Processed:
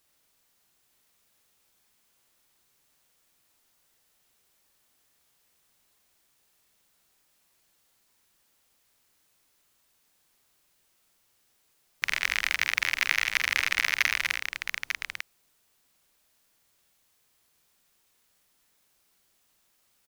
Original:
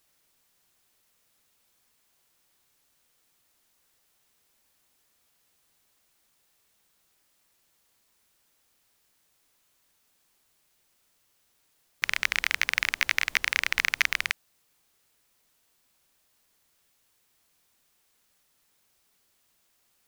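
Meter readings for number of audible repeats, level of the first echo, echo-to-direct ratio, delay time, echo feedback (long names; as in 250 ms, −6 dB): 3, −7.0 dB, −2.5 dB, 46 ms, repeats not evenly spaced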